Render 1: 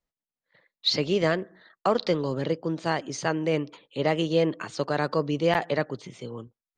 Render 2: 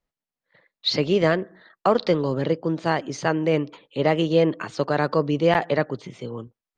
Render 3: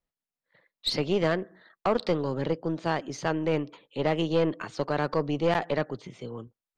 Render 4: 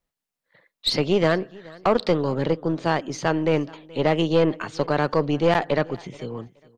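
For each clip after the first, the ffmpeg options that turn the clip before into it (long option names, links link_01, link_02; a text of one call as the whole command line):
ffmpeg -i in.wav -af "aemphasis=mode=reproduction:type=cd,volume=4dB" out.wav
ffmpeg -i in.wav -af "aeval=exprs='(tanh(3.98*val(0)+0.4)-tanh(0.4))/3.98':channel_layout=same,volume=-3.5dB" out.wav
ffmpeg -i in.wav -af "aecho=1:1:426|852:0.0708|0.0177,volume=5.5dB" out.wav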